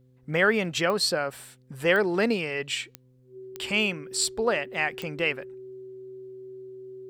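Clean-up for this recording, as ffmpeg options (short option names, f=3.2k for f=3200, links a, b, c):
-af "adeclick=t=4,bandreject=f=127.5:t=h:w=4,bandreject=f=255:t=h:w=4,bandreject=f=382.5:t=h:w=4,bandreject=f=510:t=h:w=4,bandreject=f=380:w=30"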